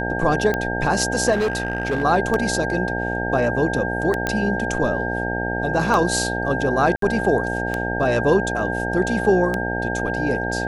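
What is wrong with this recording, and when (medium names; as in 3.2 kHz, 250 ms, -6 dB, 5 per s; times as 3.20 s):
buzz 60 Hz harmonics 15 -26 dBFS
tick 33 1/3 rpm -9 dBFS
whine 1.6 kHz -26 dBFS
1.32–2.04 s: clipped -17 dBFS
4.27 s: pop -8 dBFS
6.96–7.02 s: dropout 63 ms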